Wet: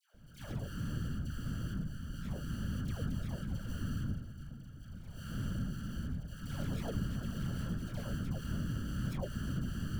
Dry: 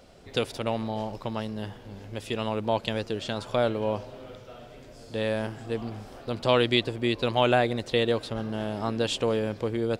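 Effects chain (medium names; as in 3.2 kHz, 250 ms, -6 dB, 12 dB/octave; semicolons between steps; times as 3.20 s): tracing distortion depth 0.062 ms; Chebyshev band-stop 180–6200 Hz, order 4; amplifier tone stack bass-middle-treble 10-0-1; hum notches 60/120/180/240 Hz; transient shaper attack -4 dB, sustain +7 dB; sample-rate reducer 1.5 kHz, jitter 0%; one-sided clip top -49 dBFS; small resonant body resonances 550/3300 Hz, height 15 dB, ringing for 90 ms; whisper effect; phase dispersion lows, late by 143 ms, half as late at 1 kHz; trim +14.5 dB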